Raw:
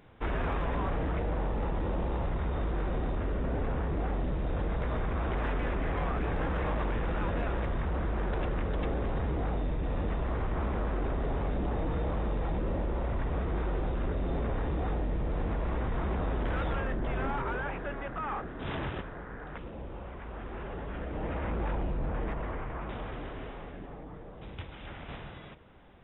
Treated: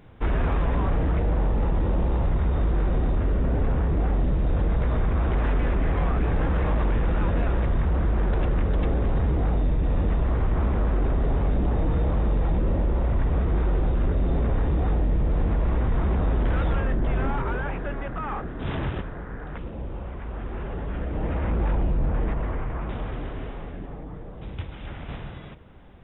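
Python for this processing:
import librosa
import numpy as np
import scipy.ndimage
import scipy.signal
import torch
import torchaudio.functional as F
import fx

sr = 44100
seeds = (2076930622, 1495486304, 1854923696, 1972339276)

y = fx.low_shelf(x, sr, hz=260.0, db=7.5)
y = y * librosa.db_to_amplitude(2.5)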